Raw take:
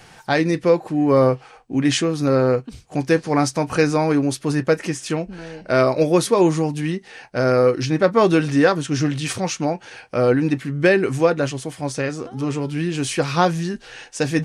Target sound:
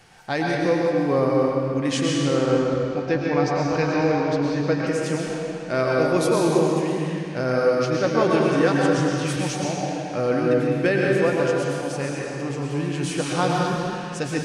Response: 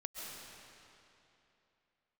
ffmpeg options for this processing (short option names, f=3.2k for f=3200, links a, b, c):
-filter_complex "[0:a]asettb=1/sr,asplit=3[a][b][c];[a]atrim=end=2.164[d];[b]atrim=start=2.16:end=4.87,asetpts=PTS-STARTPTS,afade=t=in:d=0.004:c=qsin,afade=t=out:st=2.706:d=0.004:c=qsin,lowpass=f=5.2k:w=0.5412,lowpass=f=5.2k:w=1.3066[e];[c]atrim=start=4.866[f];[d][e]acrossfade=d=0.004:c1=hsin:c2=qsin[g];[g][f]acrossfade=d=0.004:c1=qsin:c2=hsin[h];[1:a]atrim=start_sample=2205,asetrate=52920,aresample=44100[i];[h][i]afir=irnorm=-1:irlink=0"